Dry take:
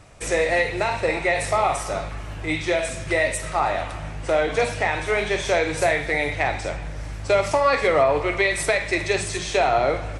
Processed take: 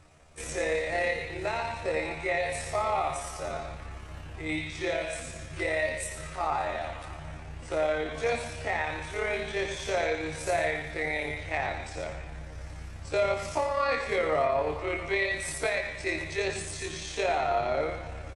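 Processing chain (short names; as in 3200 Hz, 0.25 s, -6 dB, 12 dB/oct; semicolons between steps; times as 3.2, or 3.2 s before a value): granular stretch 1.8×, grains 58 ms; echo 0.107 s -12 dB; gain -7.5 dB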